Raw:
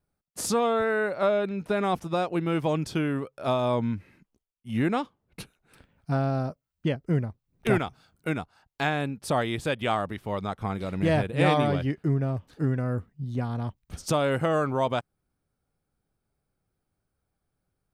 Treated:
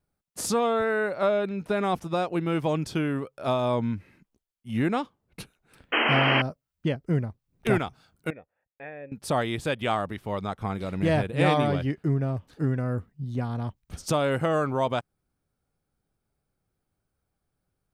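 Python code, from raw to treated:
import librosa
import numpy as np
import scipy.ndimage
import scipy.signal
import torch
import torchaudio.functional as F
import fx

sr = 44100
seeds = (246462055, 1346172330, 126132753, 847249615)

y = fx.spec_paint(x, sr, seeds[0], shape='noise', start_s=5.92, length_s=0.5, low_hz=210.0, high_hz=3200.0, level_db=-23.0)
y = fx.formant_cascade(y, sr, vowel='e', at=(8.3, 9.12))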